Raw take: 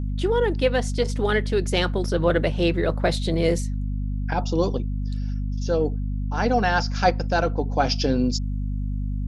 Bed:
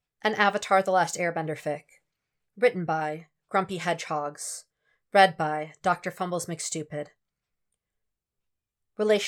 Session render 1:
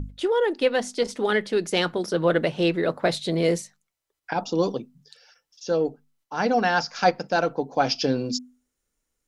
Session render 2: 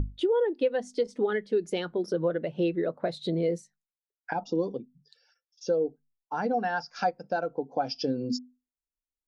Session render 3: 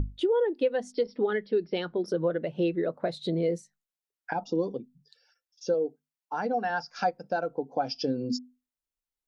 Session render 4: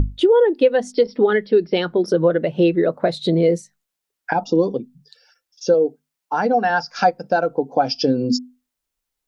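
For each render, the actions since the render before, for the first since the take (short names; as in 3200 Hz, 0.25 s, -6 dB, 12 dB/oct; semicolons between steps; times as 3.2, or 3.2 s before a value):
notches 50/100/150/200/250 Hz
compressor 4:1, threshold -31 dBFS, peak gain reduction 15 dB; spectral expander 1.5:1
0.92–2.06 brick-wall FIR low-pass 5700 Hz; 5.74–6.7 HPF 230 Hz 6 dB/oct
gain +11 dB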